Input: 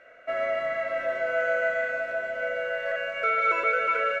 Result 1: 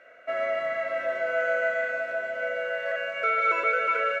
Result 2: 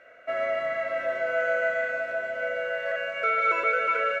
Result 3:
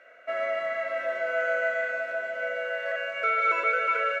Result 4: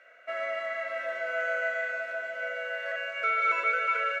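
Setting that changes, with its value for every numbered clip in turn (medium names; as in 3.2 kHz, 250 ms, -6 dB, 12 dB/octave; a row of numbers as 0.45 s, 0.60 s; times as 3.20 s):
high-pass, cutoff frequency: 160 Hz, 43 Hz, 430 Hz, 1.2 kHz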